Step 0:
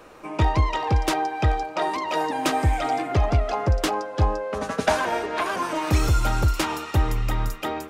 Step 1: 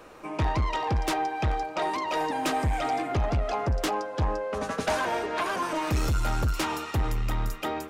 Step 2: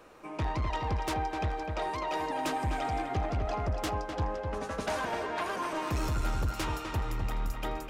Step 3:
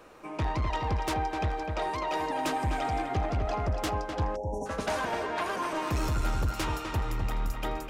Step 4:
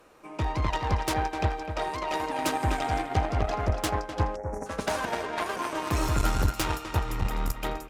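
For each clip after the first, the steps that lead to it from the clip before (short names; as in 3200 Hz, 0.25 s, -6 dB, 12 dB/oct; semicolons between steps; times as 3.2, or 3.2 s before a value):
soft clip -19 dBFS, distortion -12 dB; gain -1.5 dB
darkening echo 0.253 s, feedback 43%, low-pass 2800 Hz, level -5 dB; gain -6 dB
spectral delete 4.36–4.66, 1000–5400 Hz; gain +2 dB
high shelf 6900 Hz +5.5 dB; downsampling 32000 Hz; added harmonics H 3 -12 dB, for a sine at -19 dBFS; gain +8 dB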